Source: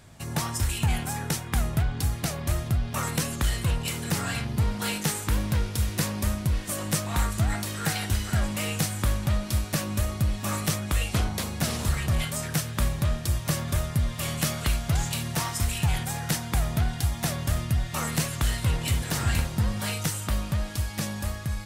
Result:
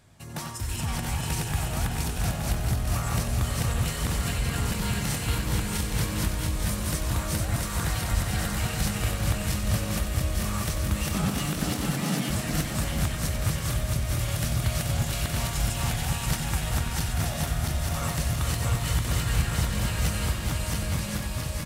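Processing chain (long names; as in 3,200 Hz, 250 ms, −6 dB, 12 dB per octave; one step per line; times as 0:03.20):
feedback delay that plays each chunk backwards 340 ms, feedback 65%, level 0 dB
0:11.15–0:12.30: frequency shifter +94 Hz
multi-tap delay 93/431/870 ms −8.5/−6.5/−6 dB
level −6.5 dB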